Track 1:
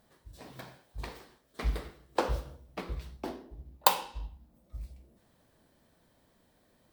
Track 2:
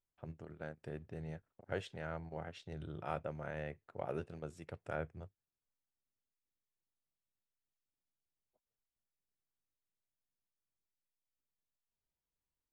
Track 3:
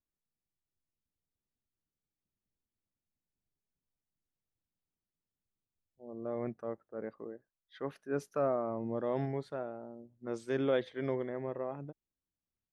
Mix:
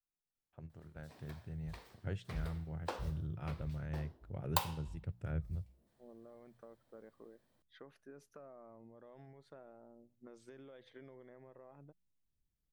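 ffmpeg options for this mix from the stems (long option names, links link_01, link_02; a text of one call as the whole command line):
ffmpeg -i stem1.wav -i stem2.wav -i stem3.wav -filter_complex "[0:a]adelay=700,volume=-10dB[link_01];[1:a]asubboost=boost=10:cutoff=240,adelay=350,volume=-6dB[link_02];[2:a]acontrast=33,alimiter=level_in=1dB:limit=-24dB:level=0:latency=1:release=73,volume=-1dB,acompressor=threshold=-39dB:ratio=6,volume=-12dB[link_03];[link_01][link_02][link_03]amix=inputs=3:normalize=0,bandreject=frequency=59.97:width_type=h:width=4,bandreject=frequency=119.94:width_type=h:width=4,bandreject=frequency=179.91:width_type=h:width=4,adynamicequalizer=threshold=0.00112:dfrequency=290:dqfactor=0.8:tfrequency=290:tqfactor=0.8:attack=5:release=100:ratio=0.375:range=3:mode=cutabove:tftype=bell" out.wav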